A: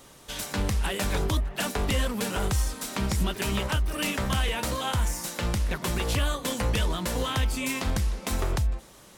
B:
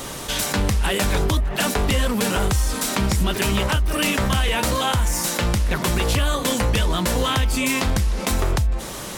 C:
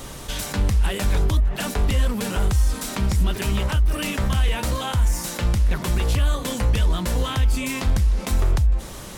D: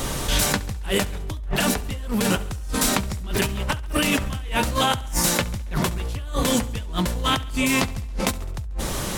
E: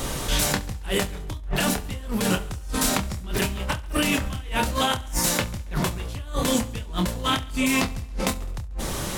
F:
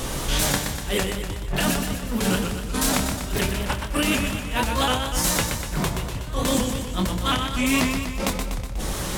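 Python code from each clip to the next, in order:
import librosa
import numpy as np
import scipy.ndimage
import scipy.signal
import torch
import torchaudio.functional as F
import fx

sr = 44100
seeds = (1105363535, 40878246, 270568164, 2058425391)

y1 = fx.env_flatten(x, sr, amount_pct=50)
y1 = F.gain(torch.from_numpy(y1), 4.5).numpy()
y2 = fx.low_shelf(y1, sr, hz=110.0, db=11.5)
y2 = F.gain(torch.from_numpy(y2), -6.5).numpy()
y3 = fx.over_compress(y2, sr, threshold_db=-28.0, ratio=-1.0)
y3 = fx.echo_feedback(y3, sr, ms=69, feedback_pct=59, wet_db=-20)
y3 = F.gain(torch.from_numpy(y3), 2.5).numpy()
y4 = fx.doubler(y3, sr, ms=27.0, db=-8.0)
y4 = F.gain(torch.from_numpy(y4), -2.5).numpy()
y5 = fx.echo_feedback(y4, sr, ms=122, feedback_pct=59, wet_db=-6)
y5 = fx.vibrato_shape(y5, sr, shape='saw_up', rate_hz=4.1, depth_cents=100.0)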